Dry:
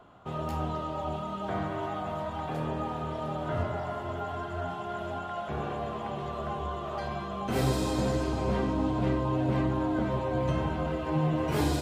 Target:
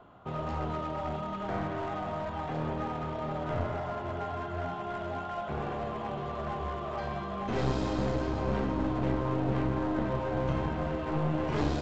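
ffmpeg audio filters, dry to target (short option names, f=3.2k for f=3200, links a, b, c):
-af "aemphasis=mode=reproduction:type=50fm,aresample=16000,aeval=exprs='clip(val(0),-1,0.0237)':c=same,aresample=44100"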